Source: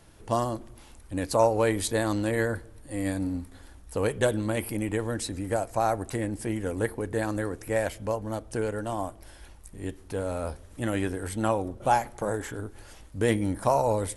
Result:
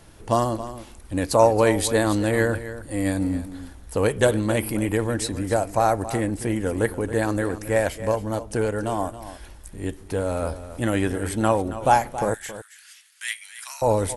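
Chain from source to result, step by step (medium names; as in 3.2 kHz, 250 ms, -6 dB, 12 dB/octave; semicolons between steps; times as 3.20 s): 12.34–13.82 s: inverse Chebyshev high-pass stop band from 400 Hz, stop band 70 dB; delay 274 ms -13.5 dB; trim +5.5 dB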